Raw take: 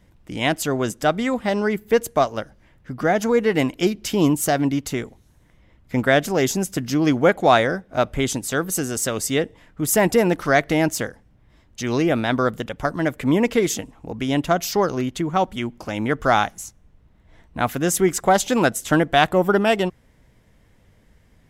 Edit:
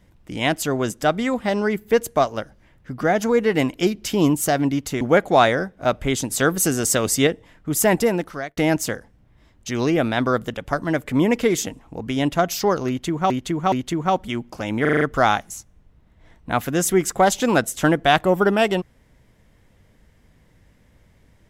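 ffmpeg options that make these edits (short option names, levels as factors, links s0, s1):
-filter_complex "[0:a]asplit=12[s0][s1][s2][s3][s4][s5][s6][s7][s8][s9][s10][s11];[s0]atrim=end=5.012[s12];[s1]atrim=start=7.128:end=8.422[s13];[s2]atrim=start=8.418:end=9.392,asetpts=PTS-STARTPTS,volume=1.58[s14];[s3]atrim=start=9.388:end=10.69,asetpts=PTS-STARTPTS,afade=t=out:st=0.662:d=0.64[s15];[s4]atrim=start=10.69:end=15.422,asetpts=PTS-STARTPTS,afade=t=in:d=0.004:c=hsin[s16];[s5]atrim=start=14.998:end=15.422[s17];[s6]atrim=start=14.998:end=16.132[s18];[s7]atrim=start=16.088:end=16.132[s19];[s8]atrim=start=16.088:end=16.132[s20];[s9]atrim=start=16.088:end=16.132[s21];[s10]atrim=start=16.088:end=16.132[s22];[s11]atrim=start=16.088[s23];[s12][s13]acrossfade=d=0.004:c1=hsin:c2=hsin[s24];[s24][s14]acrossfade=d=0.004:c1=hsin:c2=hsin[s25];[s15][s16]concat=n=2:v=0:a=1[s26];[s25][s26]acrossfade=d=0.004:c1=hsin:c2=hsin[s27];[s27][s17]acrossfade=d=0.004:c1=hsin:c2=hsin[s28];[s28][s18]acrossfade=d=0.004:c1=hsin:c2=hsin[s29];[s29][s19]acrossfade=d=0.004:c1=hsin:c2=hsin[s30];[s30][s20]acrossfade=d=0.004:c1=hsin:c2=hsin[s31];[s31][s21]acrossfade=d=0.004:c1=hsin:c2=hsin[s32];[s32][s22]acrossfade=d=0.004:c1=hsin:c2=hsin[s33];[s33][s23]acrossfade=d=0.004:c1=hsin:c2=hsin"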